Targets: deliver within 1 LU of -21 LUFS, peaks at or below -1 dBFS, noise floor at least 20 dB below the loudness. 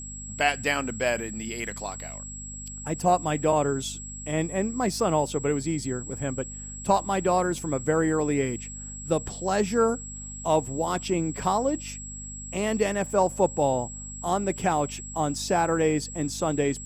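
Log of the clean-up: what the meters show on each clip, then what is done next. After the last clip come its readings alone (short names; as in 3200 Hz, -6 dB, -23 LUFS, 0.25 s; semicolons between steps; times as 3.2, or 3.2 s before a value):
hum 50 Hz; harmonics up to 250 Hz; hum level -40 dBFS; steady tone 7700 Hz; tone level -38 dBFS; loudness -27.0 LUFS; peak -9.0 dBFS; loudness target -21.0 LUFS
-> de-hum 50 Hz, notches 5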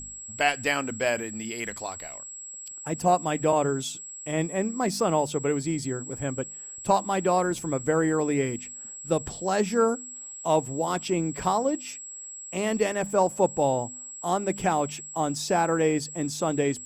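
hum none; steady tone 7700 Hz; tone level -38 dBFS
-> notch 7700 Hz, Q 30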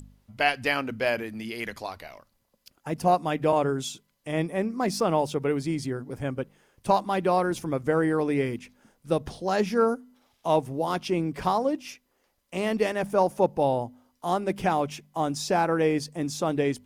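steady tone none; loudness -27.0 LUFS; peak -9.5 dBFS; loudness target -21.0 LUFS
-> gain +6 dB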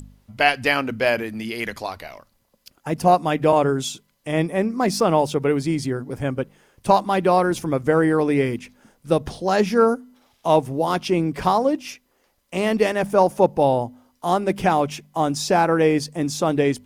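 loudness -21.0 LUFS; peak -3.5 dBFS; noise floor -66 dBFS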